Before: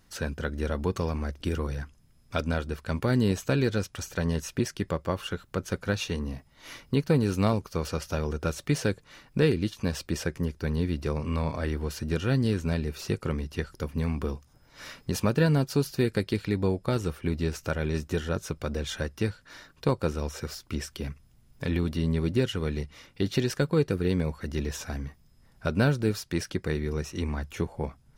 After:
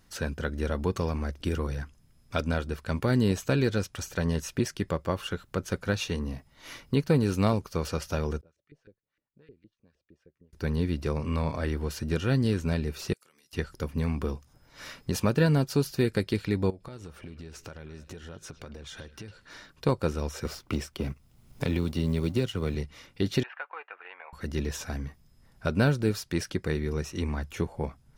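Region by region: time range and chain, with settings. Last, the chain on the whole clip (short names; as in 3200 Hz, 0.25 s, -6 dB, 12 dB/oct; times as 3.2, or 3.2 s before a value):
8.41–10.53 LFO band-pass saw up 6.5 Hz 390–1900 Hz + passive tone stack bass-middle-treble 10-0-1
13.13–13.53 differentiator + compressor 10:1, threshold -57 dBFS + HPF 140 Hz
16.7–19.7 bell 13000 Hz -10 dB 0.31 oct + compressor 8:1, threshold -39 dBFS + delay with a stepping band-pass 0.105 s, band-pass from 3300 Hz, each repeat -1.4 oct, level -10 dB
20.45–22.75 G.711 law mismatch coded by A + bell 1700 Hz -6 dB 0.27 oct + three-band squash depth 70%
23.43–24.33 upward compressor, threshold -31 dBFS + elliptic band-pass 760–2700 Hz, stop band 70 dB + air absorption 230 m
whole clip: dry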